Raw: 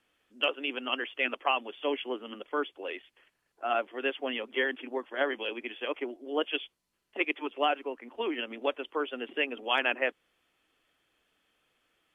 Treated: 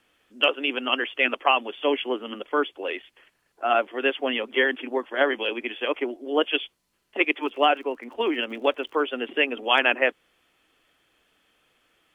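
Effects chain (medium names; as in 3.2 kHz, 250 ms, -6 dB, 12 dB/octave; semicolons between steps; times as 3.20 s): 7.37–9.02 s: crackle 51 per s -51 dBFS; trim +7.5 dB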